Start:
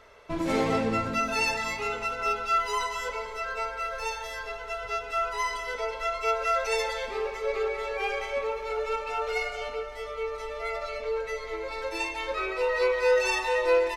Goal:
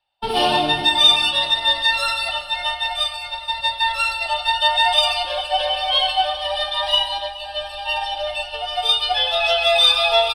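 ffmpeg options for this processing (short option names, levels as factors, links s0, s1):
-filter_complex "[0:a]agate=range=0.0224:threshold=0.0282:ratio=3:detection=peak,superequalizer=8b=2.82:14b=0.447:15b=2.24,acrossover=split=110|2800[s0][s1][s2];[s1]aexciter=amount=14.3:drive=2.1:freq=2200[s3];[s2]asoftclip=type=tanh:threshold=0.0133[s4];[s0][s3][s4]amix=inputs=3:normalize=0,aecho=1:1:572|1144|1716|2288:0.112|0.0606|0.0327|0.0177,asetrate=59535,aresample=44100,volume=1.5"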